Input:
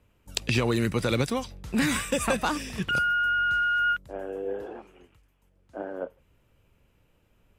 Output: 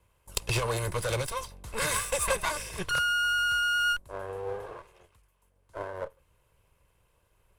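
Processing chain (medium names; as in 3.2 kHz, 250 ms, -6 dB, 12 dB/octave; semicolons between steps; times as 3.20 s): comb filter that takes the minimum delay 1.9 ms; fifteen-band graphic EQ 250 Hz -7 dB, 1 kHz +6 dB, 10 kHz +10 dB; trim -2 dB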